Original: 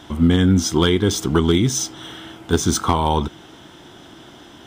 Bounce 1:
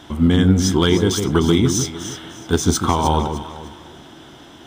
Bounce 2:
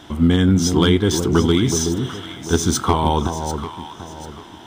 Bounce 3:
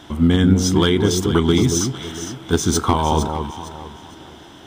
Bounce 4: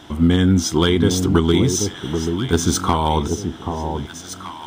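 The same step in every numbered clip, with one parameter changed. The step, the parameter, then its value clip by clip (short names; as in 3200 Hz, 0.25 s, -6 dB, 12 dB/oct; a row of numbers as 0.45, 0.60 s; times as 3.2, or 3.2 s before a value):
echo with dull and thin repeats by turns, time: 0.152, 0.371, 0.229, 0.783 s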